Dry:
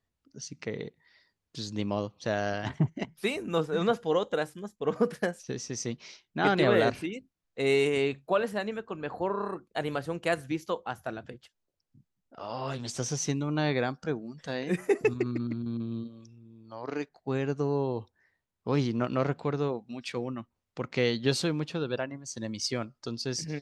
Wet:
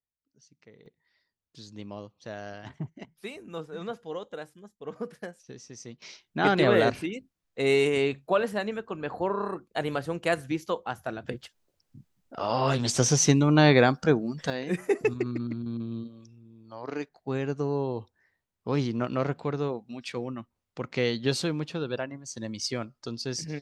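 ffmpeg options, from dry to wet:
-af "asetnsamples=n=441:p=0,asendcmd='0.86 volume volume -9.5dB;6.02 volume volume 2dB;11.28 volume volume 9.5dB;14.5 volume volume 0dB',volume=0.112"

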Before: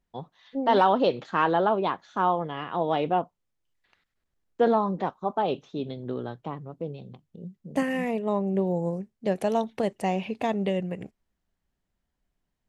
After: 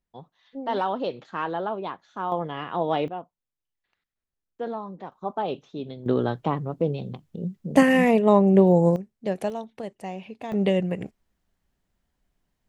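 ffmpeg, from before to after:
-af "asetnsamples=n=441:p=0,asendcmd='2.32 volume volume 1dB;3.08 volume volume -10dB;5.12 volume volume -2dB;6.06 volume volume 9.5dB;8.96 volume volume -1dB;9.5 volume volume -8dB;10.52 volume volume 5dB',volume=0.501"

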